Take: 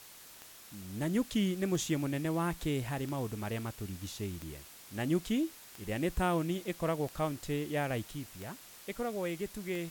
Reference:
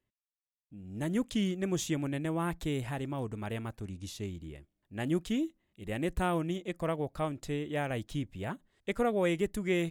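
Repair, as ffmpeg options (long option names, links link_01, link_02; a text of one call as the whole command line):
ffmpeg -i in.wav -af "adeclick=threshold=4,afwtdn=0.0025,asetnsamples=nb_out_samples=441:pad=0,asendcmd='8.11 volume volume 7dB',volume=0dB" out.wav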